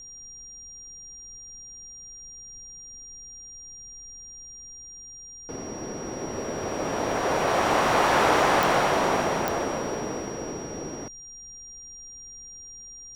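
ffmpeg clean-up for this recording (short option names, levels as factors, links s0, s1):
-af "adeclick=t=4,bandreject=f=5700:w=30,agate=range=0.0891:threshold=0.0158"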